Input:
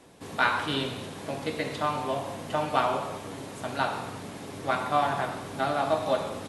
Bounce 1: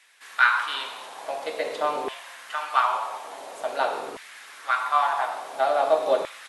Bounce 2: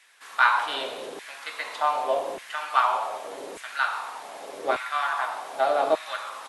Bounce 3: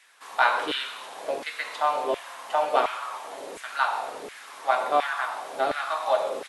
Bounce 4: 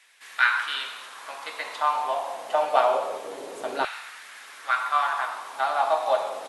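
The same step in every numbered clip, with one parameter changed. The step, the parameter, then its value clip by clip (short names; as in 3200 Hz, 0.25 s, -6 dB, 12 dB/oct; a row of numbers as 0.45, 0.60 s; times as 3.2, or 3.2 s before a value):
LFO high-pass, rate: 0.48, 0.84, 1.4, 0.26 Hz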